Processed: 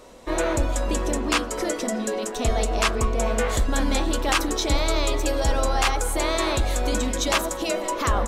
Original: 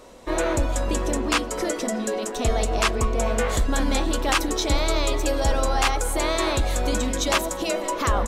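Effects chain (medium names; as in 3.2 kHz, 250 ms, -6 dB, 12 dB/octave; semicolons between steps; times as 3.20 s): de-hum 91.08 Hz, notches 19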